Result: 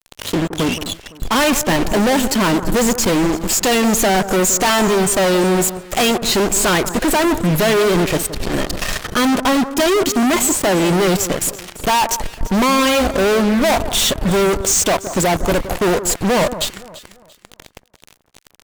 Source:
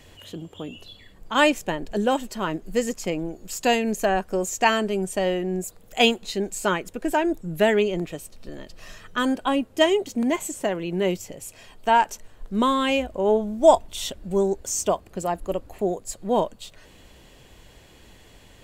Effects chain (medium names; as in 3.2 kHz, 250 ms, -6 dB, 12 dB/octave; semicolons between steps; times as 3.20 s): fuzz box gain 43 dB, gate -41 dBFS; echo whose repeats swap between lows and highs 170 ms, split 1.5 kHz, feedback 53%, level -12 dB